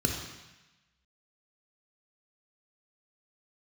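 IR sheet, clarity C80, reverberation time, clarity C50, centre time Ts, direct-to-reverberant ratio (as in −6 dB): 6.0 dB, 1.0 s, 3.5 dB, 50 ms, 1.0 dB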